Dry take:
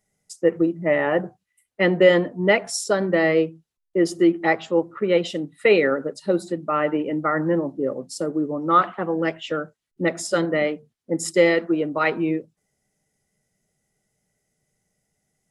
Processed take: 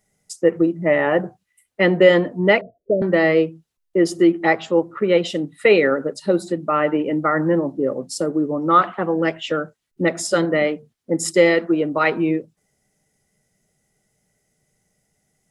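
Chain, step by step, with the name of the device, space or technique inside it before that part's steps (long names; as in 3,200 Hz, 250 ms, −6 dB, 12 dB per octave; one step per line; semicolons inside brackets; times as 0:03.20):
0:02.61–0:03.02: Butterworth low-pass 650 Hz 96 dB per octave
parallel compression (in parallel at −5.5 dB: downward compressor, threshold −27 dBFS, peak gain reduction 16.5 dB)
on the sum: level +1.5 dB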